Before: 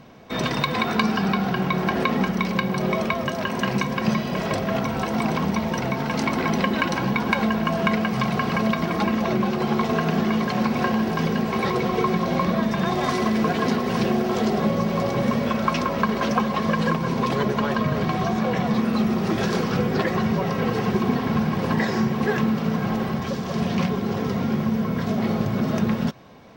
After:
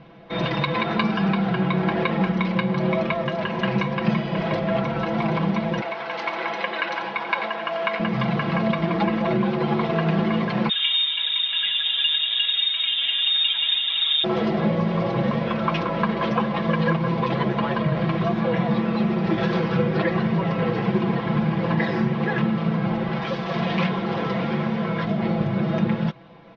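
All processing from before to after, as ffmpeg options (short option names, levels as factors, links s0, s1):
-filter_complex "[0:a]asettb=1/sr,asplit=3[s0][s1][s2];[s0]atrim=end=5.814[s3];[s1]atrim=start=5.81:end=8,asetpts=PTS-STARTPTS,afade=t=in:d=0.004:c=qsin,afade=t=out:st=2.186:d=0.004:c=qsin,highpass=610,aecho=1:1:89:0.335,atrim=end_sample=96579[s4];[s2]atrim=start=7.996[s5];[s3][s4]acrossfade=d=0.004:c1=hsin:c2=qsin[s6];[s6][s5]acrossfade=d=0.004:c1=qsin:c2=hsin,asettb=1/sr,asplit=3[s7][s8][s9];[s7]atrim=end=10.694[s10];[s8]atrim=start=10.69:end=14.24,asetpts=PTS-STARTPTS,afade=t=in:d=0.004:c=qsin,afade=t=out:st=3.546:d=0.004:c=qsin,acrossover=split=2600[s11][s12];[s12]acompressor=threshold=0.01:ratio=4:attack=1:release=60[s13];[s11][s13]amix=inputs=2:normalize=0,highshelf=f=2500:g=-7.5,lowpass=f=3300:t=q:w=0.5098,lowpass=f=3300:t=q:w=0.6013,lowpass=f=3300:t=q:w=0.9,lowpass=f=3300:t=q:w=2.563,afreqshift=-3900[s14];[s9]atrim=start=14.236[s15];[s10][s14]acrossfade=d=0.004:c1=hsin:c2=qsin[s16];[s16][s15]acrossfade=d=0.004:c1=qsin:c2=hsin,asettb=1/sr,asplit=3[s17][s18][s19];[s17]atrim=end=23.114[s20];[s18]atrim=start=23.11:end=25.05,asetpts=PTS-STARTPTS,afade=t=in:d=0.004:c=qsin,afade=t=out:st=1.936:d=0.004:c=qsin,lowshelf=f=360:g=-9.5,acontrast=31[s21];[s19]atrim=start=25.046[s22];[s20][s21]acrossfade=d=0.004:c1=hsin:c2=qsin[s23];[s23][s22]acrossfade=d=0.004:c1=qsin:c2=hsin,lowpass=f=3800:w=0.5412,lowpass=f=3800:w=1.3066,aecho=1:1:6:0.87,volume=0.794"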